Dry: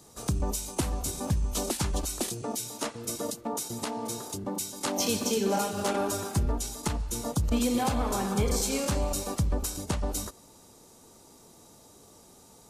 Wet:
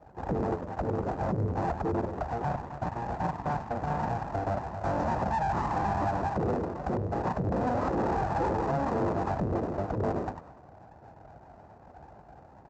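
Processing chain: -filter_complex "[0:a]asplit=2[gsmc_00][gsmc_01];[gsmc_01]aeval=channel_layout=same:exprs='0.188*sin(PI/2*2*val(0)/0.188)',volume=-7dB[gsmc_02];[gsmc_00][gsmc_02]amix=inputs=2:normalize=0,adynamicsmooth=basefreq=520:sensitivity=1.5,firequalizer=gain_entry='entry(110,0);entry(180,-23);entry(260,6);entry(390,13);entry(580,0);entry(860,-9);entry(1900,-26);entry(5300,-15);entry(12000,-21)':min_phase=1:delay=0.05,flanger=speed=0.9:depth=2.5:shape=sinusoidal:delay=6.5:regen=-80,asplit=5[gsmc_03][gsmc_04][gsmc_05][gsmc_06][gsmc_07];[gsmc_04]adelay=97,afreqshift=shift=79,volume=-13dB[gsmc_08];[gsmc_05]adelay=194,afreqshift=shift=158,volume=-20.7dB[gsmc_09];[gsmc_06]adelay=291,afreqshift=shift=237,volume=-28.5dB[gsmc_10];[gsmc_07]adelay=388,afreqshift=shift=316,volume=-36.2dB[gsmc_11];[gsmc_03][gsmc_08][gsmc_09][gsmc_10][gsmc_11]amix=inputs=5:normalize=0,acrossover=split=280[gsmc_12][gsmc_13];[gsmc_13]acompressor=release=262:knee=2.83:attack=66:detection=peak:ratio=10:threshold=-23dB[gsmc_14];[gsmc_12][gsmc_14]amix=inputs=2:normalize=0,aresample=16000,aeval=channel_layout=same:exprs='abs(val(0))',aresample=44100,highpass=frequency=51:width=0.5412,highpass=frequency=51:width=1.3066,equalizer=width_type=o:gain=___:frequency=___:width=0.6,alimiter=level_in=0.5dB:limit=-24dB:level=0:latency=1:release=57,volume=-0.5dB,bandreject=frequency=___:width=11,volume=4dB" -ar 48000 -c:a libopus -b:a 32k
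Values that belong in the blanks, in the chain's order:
-10, 3200, 2200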